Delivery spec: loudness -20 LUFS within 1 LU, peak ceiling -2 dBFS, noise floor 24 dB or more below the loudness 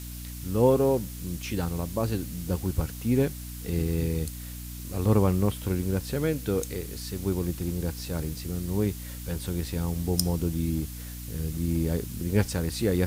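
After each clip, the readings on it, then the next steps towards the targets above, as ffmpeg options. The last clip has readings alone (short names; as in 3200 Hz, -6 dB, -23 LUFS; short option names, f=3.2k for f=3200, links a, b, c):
hum 60 Hz; harmonics up to 300 Hz; hum level -37 dBFS; noise floor -39 dBFS; noise floor target -53 dBFS; loudness -28.5 LUFS; peak -7.0 dBFS; loudness target -20.0 LUFS
-> -af "bandreject=f=60:t=h:w=4,bandreject=f=120:t=h:w=4,bandreject=f=180:t=h:w=4,bandreject=f=240:t=h:w=4,bandreject=f=300:t=h:w=4"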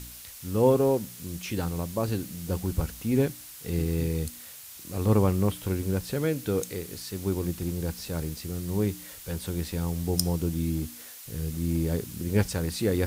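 hum none; noise floor -45 dBFS; noise floor target -53 dBFS
-> -af "afftdn=nr=8:nf=-45"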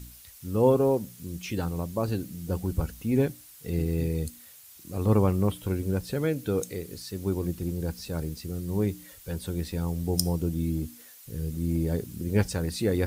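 noise floor -50 dBFS; noise floor target -53 dBFS
-> -af "afftdn=nr=6:nf=-50"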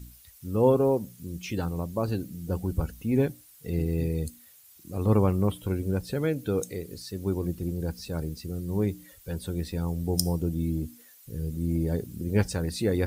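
noise floor -54 dBFS; loudness -29.0 LUFS; peak -6.5 dBFS; loudness target -20.0 LUFS
-> -af "volume=9dB,alimiter=limit=-2dB:level=0:latency=1"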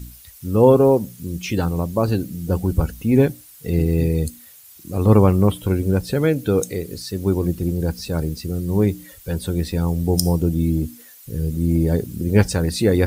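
loudness -20.0 LUFS; peak -2.0 dBFS; noise floor -45 dBFS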